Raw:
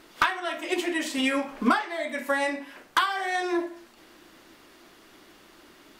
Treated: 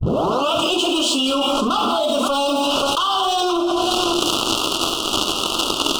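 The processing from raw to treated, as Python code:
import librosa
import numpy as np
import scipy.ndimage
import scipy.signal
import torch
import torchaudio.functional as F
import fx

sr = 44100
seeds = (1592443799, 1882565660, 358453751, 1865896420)

p1 = fx.tape_start_head(x, sr, length_s=0.53)
p2 = scipy.signal.sosfilt(scipy.signal.butter(4, 9600.0, 'lowpass', fs=sr, output='sos'), p1)
p3 = fx.low_shelf(p2, sr, hz=240.0, db=-5.5)
p4 = p3 + fx.echo_single(p3, sr, ms=529, db=-20.0, dry=0)
p5 = fx.rev_gated(p4, sr, seeds[0], gate_ms=260, shape='flat', drr_db=8.5)
p6 = fx.leveller(p5, sr, passes=3)
p7 = scipy.signal.sosfilt(scipy.signal.ellip(3, 1.0, 40, [1300.0, 2900.0], 'bandstop', fs=sr, output='sos'), p6)
p8 = fx.peak_eq(p7, sr, hz=2400.0, db=10.0, octaves=1.2)
p9 = fx.hum_notches(p8, sr, base_hz=50, count=7)
p10 = fx.env_flatten(p9, sr, amount_pct=100)
y = p10 * librosa.db_to_amplitude(-6.5)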